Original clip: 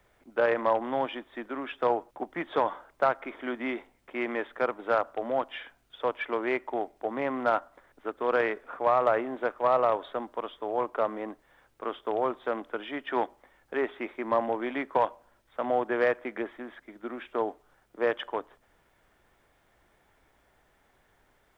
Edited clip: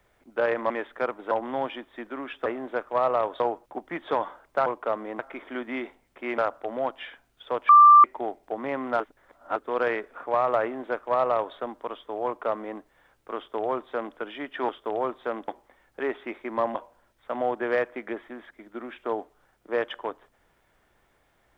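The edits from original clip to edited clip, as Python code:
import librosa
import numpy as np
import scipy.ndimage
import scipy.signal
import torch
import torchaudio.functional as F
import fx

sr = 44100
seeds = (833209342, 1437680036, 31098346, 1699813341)

y = fx.edit(x, sr, fx.move(start_s=4.3, length_s=0.61, to_s=0.7),
    fx.bleep(start_s=6.22, length_s=0.35, hz=1180.0, db=-9.0),
    fx.reverse_span(start_s=7.53, length_s=0.56),
    fx.duplicate(start_s=9.15, length_s=0.94, to_s=1.85),
    fx.duplicate(start_s=10.78, length_s=0.53, to_s=3.11),
    fx.duplicate(start_s=11.9, length_s=0.79, to_s=13.22),
    fx.cut(start_s=14.49, length_s=0.55), tone=tone)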